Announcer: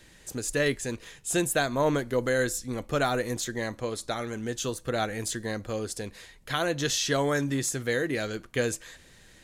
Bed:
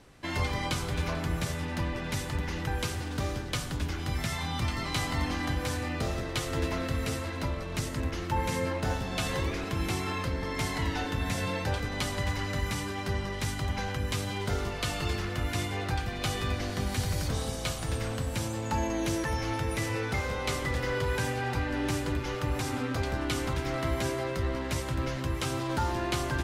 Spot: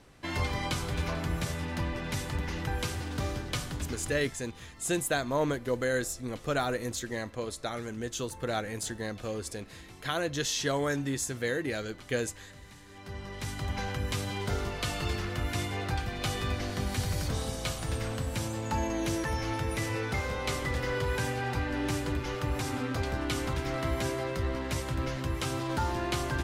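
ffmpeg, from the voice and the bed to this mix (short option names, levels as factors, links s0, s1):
-filter_complex "[0:a]adelay=3550,volume=0.668[s0];[1:a]volume=7.94,afade=t=out:st=3.57:d=0.82:silence=0.112202,afade=t=in:st=12.87:d=0.96:silence=0.112202[s1];[s0][s1]amix=inputs=2:normalize=0"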